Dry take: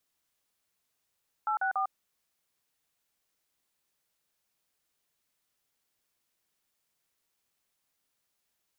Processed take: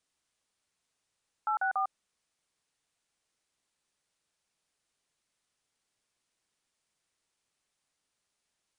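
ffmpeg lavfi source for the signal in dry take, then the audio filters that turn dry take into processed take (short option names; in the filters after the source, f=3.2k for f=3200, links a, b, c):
-f lavfi -i "aevalsrc='0.0355*clip(min(mod(t,0.143),0.101-mod(t,0.143))/0.002,0,1)*(eq(floor(t/0.143),0)*(sin(2*PI*852*mod(t,0.143))+sin(2*PI*1336*mod(t,0.143)))+eq(floor(t/0.143),1)*(sin(2*PI*770*mod(t,0.143))+sin(2*PI*1477*mod(t,0.143)))+eq(floor(t/0.143),2)*(sin(2*PI*770*mod(t,0.143))+sin(2*PI*1209*mod(t,0.143))))':d=0.429:s=44100"
-af "aresample=22050,aresample=44100"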